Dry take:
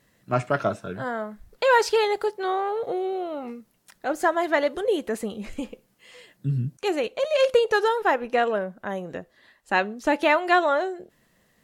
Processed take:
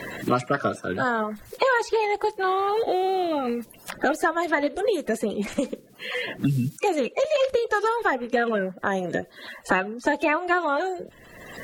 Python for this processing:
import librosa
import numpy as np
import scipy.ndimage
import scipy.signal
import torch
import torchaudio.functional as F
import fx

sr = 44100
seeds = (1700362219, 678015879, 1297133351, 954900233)

y = fx.spec_quant(x, sr, step_db=30)
y = fx.band_squash(y, sr, depth_pct=100)